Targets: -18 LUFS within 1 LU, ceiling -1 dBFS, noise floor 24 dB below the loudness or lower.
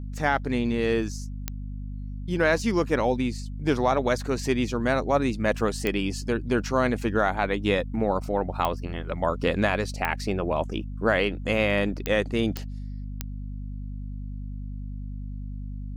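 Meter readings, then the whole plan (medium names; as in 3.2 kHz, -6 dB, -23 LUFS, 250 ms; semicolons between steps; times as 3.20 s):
clicks found 7; hum 50 Hz; highest harmonic 250 Hz; hum level -32 dBFS; loudness -26.0 LUFS; peak level -10.0 dBFS; loudness target -18.0 LUFS
-> de-click; hum notches 50/100/150/200/250 Hz; trim +8 dB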